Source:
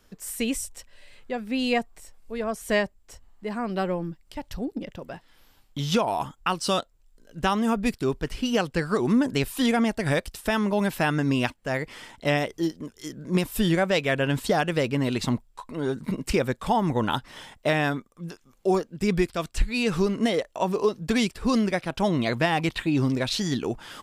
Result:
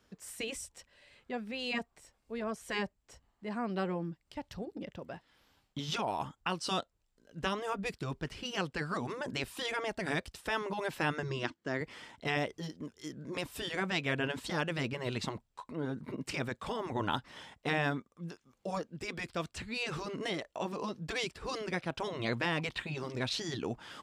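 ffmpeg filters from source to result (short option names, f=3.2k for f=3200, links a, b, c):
-filter_complex "[0:a]asettb=1/sr,asplit=3[a][b][c];[a]atrim=end=11.234[d];[b]atrim=start=11.23:end=11.81,asetpts=PTS-STARTPTS,afade=t=in:d=0.004:c=qsin,afade=t=out:st=0.576:d=0.004:c=qsin,highpass=100,equalizer=f=110:t=q:w=4:g=-9,equalizer=f=340:t=q:w=4:g=10,equalizer=f=550:t=q:w=4:g=-6,equalizer=f=800:t=q:w=4:g=-7,equalizer=f=2.5k:t=q:w=4:g=-7,lowpass=f=7.4k:w=0.5412,lowpass=f=7.4k:w=1.3066[e];[c]atrim=start=11.806[f];[d][e]acrossfade=d=0.004:c1=hsin:c2=qsin[g];[g][f]acrossfade=d=0.004:c1=qsin:c2=hsin,asettb=1/sr,asplit=3[h][i][j];[h]atrim=end=15.734[k];[i]atrim=start=15.73:end=16.21,asetpts=PTS-STARTPTS,afade=t=in:d=0.004:c=qsin,afade=t=out:st=0.476:d=0.004:c=qsin,equalizer=f=6.8k:w=0.42:g=-8.5[l];[j]atrim=start=16.206[m];[k][l]acrossfade=d=0.004:c1=hsin:c2=qsin[n];[n][m]acrossfade=d=0.004:c1=qsin:c2=hsin,afftfilt=real='re*lt(hypot(re,im),0.398)':imag='im*lt(hypot(re,im),0.398)':win_size=1024:overlap=0.75,highpass=59,equalizer=f=13k:w=0.73:g=-10.5,volume=-6dB"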